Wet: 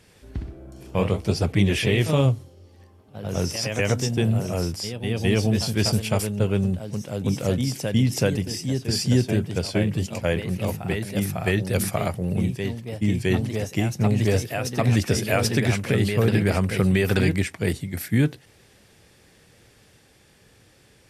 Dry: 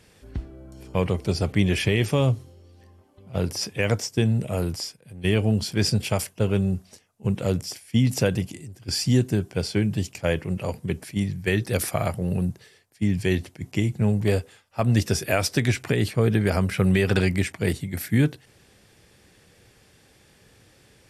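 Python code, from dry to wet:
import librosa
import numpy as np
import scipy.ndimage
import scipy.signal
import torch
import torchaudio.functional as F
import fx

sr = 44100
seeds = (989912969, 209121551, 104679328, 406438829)

y = fx.echo_pitch(x, sr, ms=82, semitones=1, count=2, db_per_echo=-6.0)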